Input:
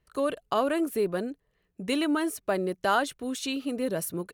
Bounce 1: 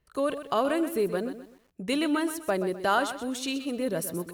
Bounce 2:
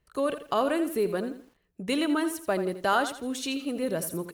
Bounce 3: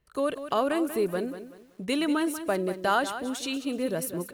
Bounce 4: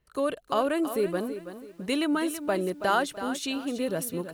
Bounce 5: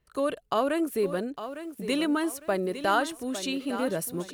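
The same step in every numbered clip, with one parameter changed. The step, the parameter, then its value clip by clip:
bit-crushed delay, time: 127 ms, 83 ms, 189 ms, 328 ms, 856 ms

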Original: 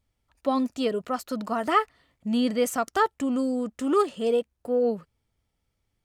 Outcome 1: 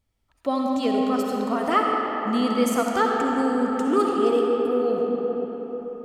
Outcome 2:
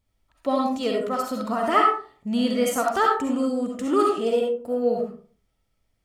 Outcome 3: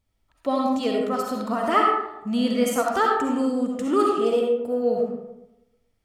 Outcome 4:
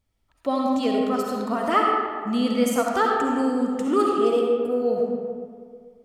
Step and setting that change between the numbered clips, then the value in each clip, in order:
algorithmic reverb, RT60: 5.1 s, 0.44 s, 0.94 s, 2 s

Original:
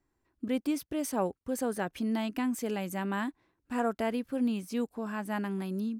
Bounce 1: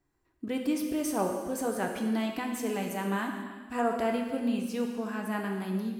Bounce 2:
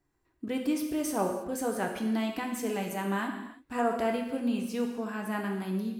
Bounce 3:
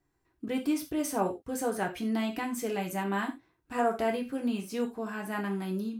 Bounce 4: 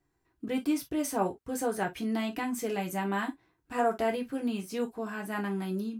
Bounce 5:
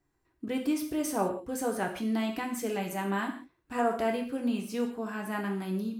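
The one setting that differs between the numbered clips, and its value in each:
gated-style reverb, gate: 520 ms, 360 ms, 120 ms, 80 ms, 200 ms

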